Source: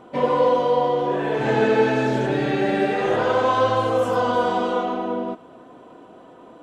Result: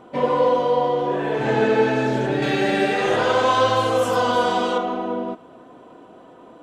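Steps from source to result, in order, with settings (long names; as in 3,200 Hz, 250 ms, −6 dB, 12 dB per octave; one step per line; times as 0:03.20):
0:02.42–0:04.78: high-shelf EQ 2,200 Hz +9.5 dB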